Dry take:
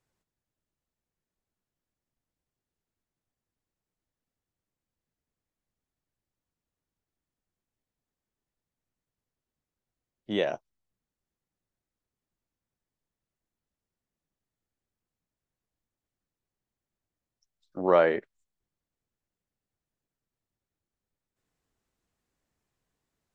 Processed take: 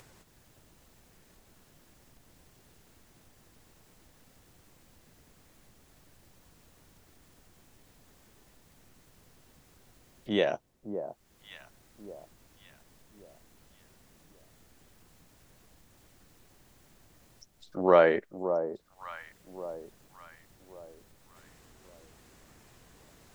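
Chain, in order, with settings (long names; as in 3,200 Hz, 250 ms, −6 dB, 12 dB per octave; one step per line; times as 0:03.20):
upward compression, threshold −39 dBFS
delay that swaps between a low-pass and a high-pass 566 ms, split 980 Hz, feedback 56%, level −9 dB
level +1 dB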